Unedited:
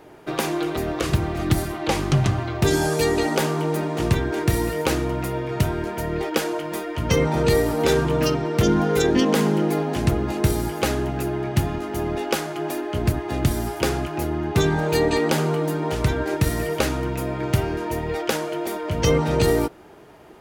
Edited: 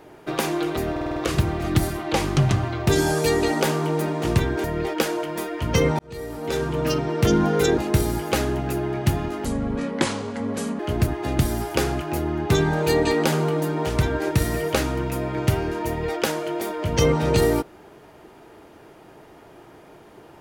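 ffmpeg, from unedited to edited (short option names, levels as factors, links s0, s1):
-filter_complex "[0:a]asplit=11[s0][s1][s2][s3][s4][s5][s6][s7][s8][s9][s10];[s0]atrim=end=0.962[s11];[s1]atrim=start=0.908:end=0.962[s12];[s2]atrim=start=0.908:end=0.962[s13];[s3]atrim=start=0.908:end=0.962[s14];[s4]atrim=start=0.908:end=0.962[s15];[s5]atrim=start=0.908:end=4.392[s16];[s6]atrim=start=5.998:end=7.35,asetpts=PTS-STARTPTS,afade=t=out:st=1.348:d=0.004:c=hsin[s17];[s7]atrim=start=7.35:end=9.142,asetpts=PTS-STARTPTS,afade=t=in:d=1.16[s18];[s8]atrim=start=10.278:end=11.954[s19];[s9]atrim=start=11.95:end=12.85,asetpts=PTS-STARTPTS,asetrate=29547,aresample=44100[s20];[s10]atrim=start=12.846[s21];[s11][s12]acrossfade=d=0.004:c1=hsin:c2=hsin[s22];[s22][s13]acrossfade=d=0.004:c1=hsin:c2=hsin[s23];[s23][s14]acrossfade=d=0.004:c1=hsin:c2=hsin[s24];[s24][s15]acrossfade=d=0.004:c1=hsin:c2=hsin[s25];[s25][s16]acrossfade=d=0.004:c1=hsin:c2=hsin[s26];[s17][s18]concat=n=2:v=0:a=1[s27];[s26][s27]acrossfade=d=0.004:c1=hsin:c2=hsin[s28];[s28][s19]acrossfade=d=0.004:c1=hsin:c2=hsin[s29];[s29][s20]acrossfade=d=0.004:c1=hsin:c2=hsin[s30];[s30][s21]acrossfade=d=0.004:c1=hsin:c2=hsin"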